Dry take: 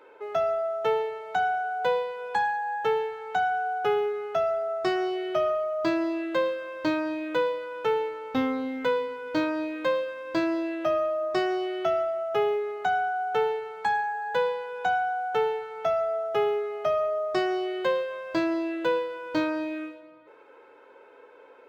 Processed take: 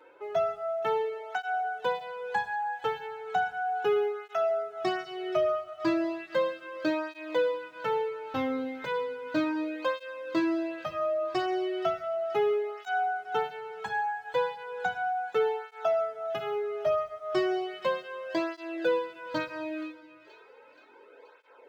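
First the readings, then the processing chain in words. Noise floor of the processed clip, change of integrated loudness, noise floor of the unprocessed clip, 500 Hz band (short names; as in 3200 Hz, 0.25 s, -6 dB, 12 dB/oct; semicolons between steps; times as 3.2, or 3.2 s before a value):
-55 dBFS, -3.0 dB, -52 dBFS, -3.0 dB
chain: thin delay 0.476 s, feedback 60%, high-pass 1500 Hz, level -16 dB; tape flanging out of phase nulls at 0.35 Hz, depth 5 ms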